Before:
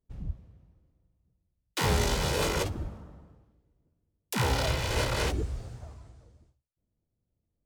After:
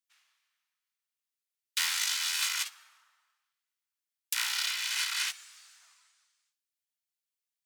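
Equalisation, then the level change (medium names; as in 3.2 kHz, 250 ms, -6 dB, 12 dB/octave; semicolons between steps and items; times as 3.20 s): Bessel high-pass 2.2 kHz, order 6; +5.0 dB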